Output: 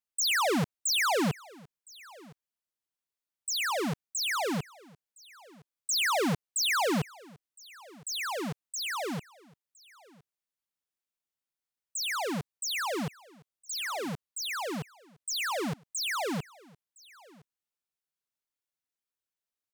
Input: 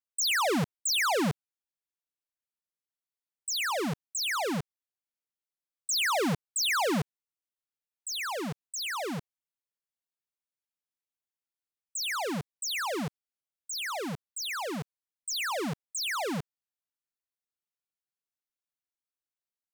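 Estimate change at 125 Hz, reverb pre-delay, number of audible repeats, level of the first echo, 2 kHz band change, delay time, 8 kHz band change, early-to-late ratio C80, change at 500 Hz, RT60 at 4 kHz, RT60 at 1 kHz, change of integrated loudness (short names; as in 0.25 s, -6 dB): 0.0 dB, none, 1, -23.5 dB, 0.0 dB, 1.013 s, 0.0 dB, none, 0.0 dB, none, none, 0.0 dB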